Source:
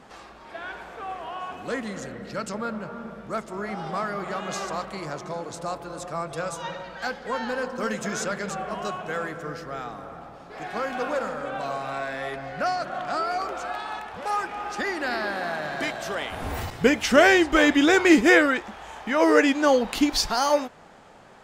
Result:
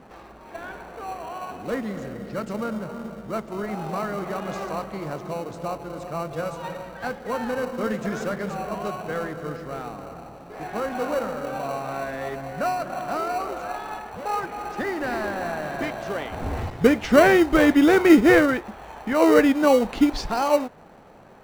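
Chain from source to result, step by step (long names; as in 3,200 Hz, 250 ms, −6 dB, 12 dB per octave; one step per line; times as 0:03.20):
low-pass filter 1,300 Hz 6 dB per octave
in parallel at −10 dB: decimation without filtering 26×
on the sum: level +1.5 dB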